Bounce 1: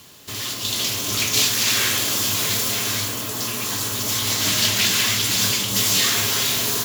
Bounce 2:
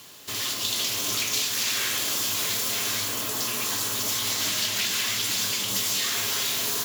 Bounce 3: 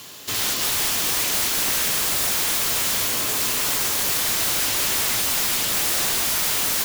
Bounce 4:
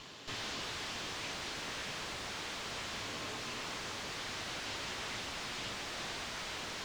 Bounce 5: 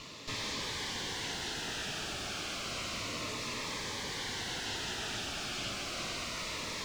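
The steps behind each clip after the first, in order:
compression, threshold -23 dBFS, peak gain reduction 8.5 dB; bass shelf 220 Hz -9.5 dB
integer overflow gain 23 dB; trim +6.5 dB
valve stage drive 32 dB, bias 0.75; distance through air 140 m; trim -1 dB
Shepard-style phaser falling 0.31 Hz; trim +4.5 dB

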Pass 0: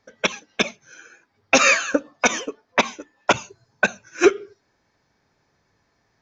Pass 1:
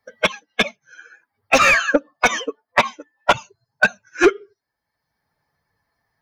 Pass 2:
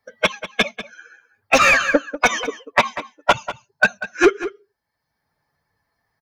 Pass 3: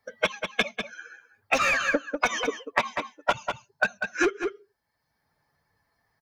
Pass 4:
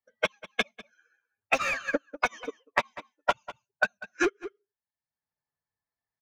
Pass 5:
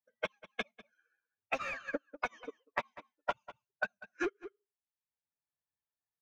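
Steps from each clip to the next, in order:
expander on every frequency bin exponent 1.5; overdrive pedal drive 18 dB, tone 1.8 kHz, clips at -4.5 dBFS; three bands compressed up and down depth 40%; trim +3 dB
echo from a far wall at 33 m, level -13 dB
compression 6:1, threshold -21 dBFS, peak gain reduction 12.5 dB
upward expansion 2.5:1, over -34 dBFS
low-pass 2.8 kHz 6 dB/octave; trim -8.5 dB

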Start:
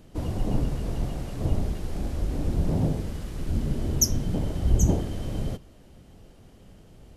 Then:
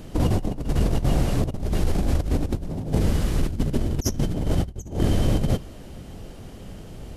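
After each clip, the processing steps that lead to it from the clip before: compressor with a negative ratio -29 dBFS, ratio -0.5; trim +7.5 dB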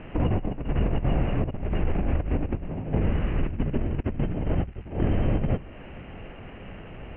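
crackle 460 per s -41 dBFS; Chebyshev low-pass 2.8 kHz, order 6; tape noise reduction on one side only encoder only; trim -2 dB

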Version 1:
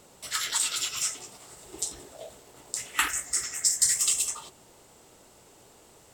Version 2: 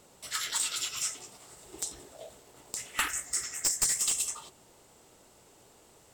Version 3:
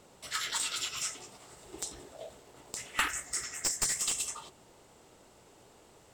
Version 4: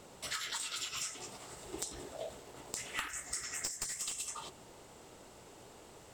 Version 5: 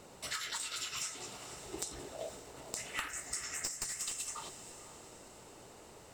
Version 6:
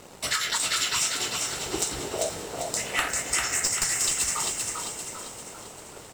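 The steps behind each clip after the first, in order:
one-sided wavefolder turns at -17 dBFS; trim -3.5 dB
treble shelf 6.4 kHz -8.5 dB; trim +1.5 dB
compression 16:1, threshold -39 dBFS, peak gain reduction 15.5 dB; trim +3.5 dB
band-stop 3.3 kHz, Q 16; echo that smears into a reverb 493 ms, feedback 45%, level -13 dB
waveshaping leveller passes 2; frequency-shifting echo 395 ms, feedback 48%, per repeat +45 Hz, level -4 dB; trim +5 dB

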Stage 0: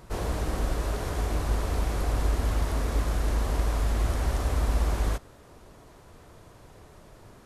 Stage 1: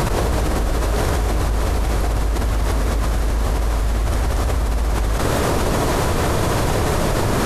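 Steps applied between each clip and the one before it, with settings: level flattener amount 100%; trim +2.5 dB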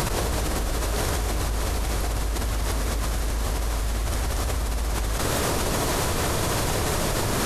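treble shelf 2.4 kHz +8.5 dB; trim -7 dB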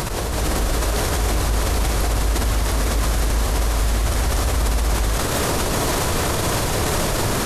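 level rider; peak limiter -11.5 dBFS, peak gain reduction 9 dB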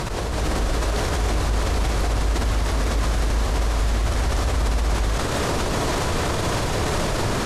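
distance through air 53 m; trim -1.5 dB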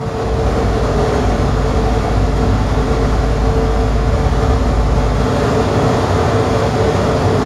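frequency-shifting echo 85 ms, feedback 61%, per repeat -63 Hz, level -6 dB; reverberation RT60 0.70 s, pre-delay 3 ms, DRR -11.5 dB; trim -14 dB

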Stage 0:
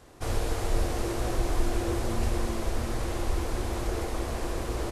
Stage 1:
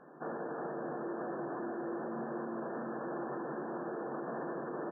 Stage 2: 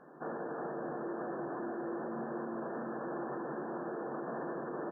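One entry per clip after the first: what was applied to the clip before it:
FFT band-pass 130–1800 Hz; peak limiter -31.5 dBFS, peak gain reduction 8.5 dB
Opus 64 kbps 48 kHz

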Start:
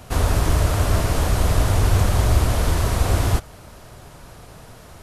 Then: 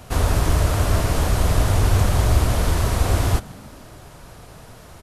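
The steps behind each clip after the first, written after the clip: frequency-shifting echo 150 ms, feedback 60%, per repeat +59 Hz, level -24 dB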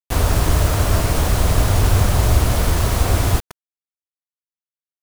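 bit crusher 5-bit; trim +2 dB

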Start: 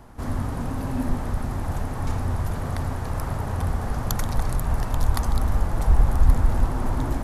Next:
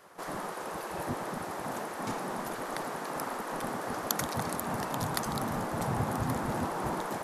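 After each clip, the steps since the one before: spectral gate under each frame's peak -15 dB weak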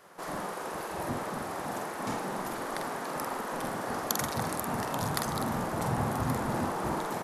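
doubling 47 ms -5 dB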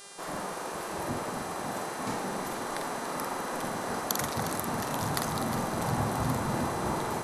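mains buzz 400 Hz, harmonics 27, -49 dBFS 0 dB/octave; echo whose repeats swap between lows and highs 179 ms, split 1 kHz, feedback 87%, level -11 dB

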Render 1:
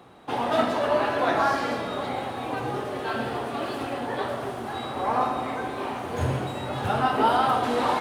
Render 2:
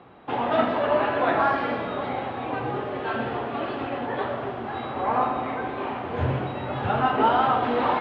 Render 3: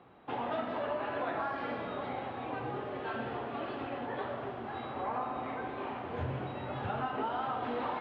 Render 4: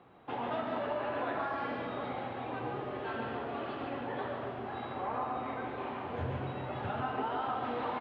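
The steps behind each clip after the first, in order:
low-pass 3.2 kHz 24 dB/octave; trim +1 dB
compression 5:1, threshold -23 dBFS, peak gain reduction 8 dB; trim -8.5 dB
delay 142 ms -5.5 dB; trim -1 dB

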